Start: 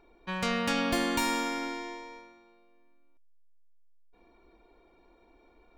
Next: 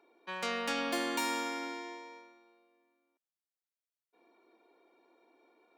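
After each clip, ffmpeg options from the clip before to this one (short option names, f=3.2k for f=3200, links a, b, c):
-af "highpass=f=270:w=0.5412,highpass=f=270:w=1.3066,volume=-4dB"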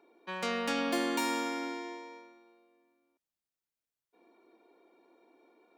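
-af "lowshelf=f=410:g=7"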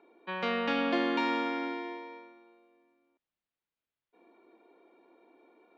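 -af "lowpass=f=3.7k:w=0.5412,lowpass=f=3.7k:w=1.3066,volume=2.5dB"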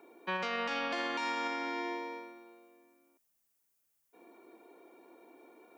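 -filter_complex "[0:a]acrossover=split=570[a][b];[a]acompressor=threshold=-42dB:ratio=6[c];[b]aexciter=amount=3.1:drive=7.8:freq=5.3k[d];[c][d]amix=inputs=2:normalize=0,alimiter=level_in=6.5dB:limit=-24dB:level=0:latency=1:release=108,volume=-6.5dB,volume=4dB"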